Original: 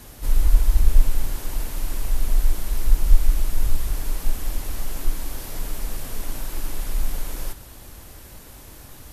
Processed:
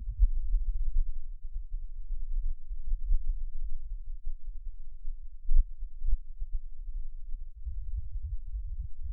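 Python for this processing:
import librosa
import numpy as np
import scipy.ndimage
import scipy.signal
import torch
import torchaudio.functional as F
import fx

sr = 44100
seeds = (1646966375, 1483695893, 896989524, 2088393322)

y = fx.gate_flip(x, sr, shuts_db=-18.0, range_db=-25)
y = fx.spec_topn(y, sr, count=2)
y = y * 10.0 ** (13.0 / 20.0)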